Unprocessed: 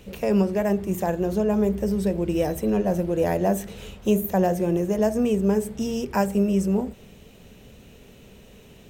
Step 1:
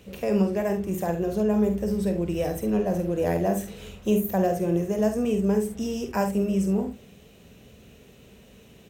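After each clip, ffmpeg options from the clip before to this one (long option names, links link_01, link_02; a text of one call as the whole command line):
ffmpeg -i in.wav -filter_complex "[0:a]highpass=48,bandreject=frequency=890:width=15,asplit=2[link_01][link_02];[link_02]aecho=0:1:47|71:0.398|0.237[link_03];[link_01][link_03]amix=inputs=2:normalize=0,volume=-3dB" out.wav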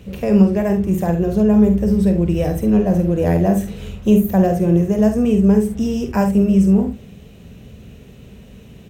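ffmpeg -i in.wav -af "bass=frequency=250:gain=9,treble=frequency=4000:gain=-3,volume=5dB" out.wav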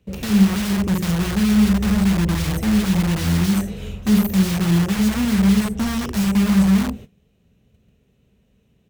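ffmpeg -i in.wav -filter_complex "[0:a]agate=range=-20dB:threshold=-34dB:ratio=16:detection=peak,acrossover=split=280|3700[link_01][link_02][link_03];[link_02]aeval=exprs='(mod(17.8*val(0)+1,2)-1)/17.8':channel_layout=same[link_04];[link_01][link_04][link_03]amix=inputs=3:normalize=0" out.wav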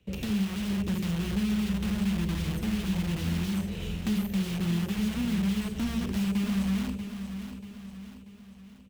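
ffmpeg -i in.wav -filter_complex "[0:a]equalizer=frequency=2900:width=1.5:gain=7,acrossover=split=460|1200|4600[link_01][link_02][link_03][link_04];[link_01]acompressor=threshold=-23dB:ratio=4[link_05];[link_02]acompressor=threshold=-46dB:ratio=4[link_06];[link_03]acompressor=threshold=-41dB:ratio=4[link_07];[link_04]acompressor=threshold=-43dB:ratio=4[link_08];[link_05][link_06][link_07][link_08]amix=inputs=4:normalize=0,asplit=2[link_09][link_10];[link_10]aecho=0:1:637|1274|1911|2548|3185:0.335|0.161|0.0772|0.037|0.0178[link_11];[link_09][link_11]amix=inputs=2:normalize=0,volume=-4.5dB" out.wav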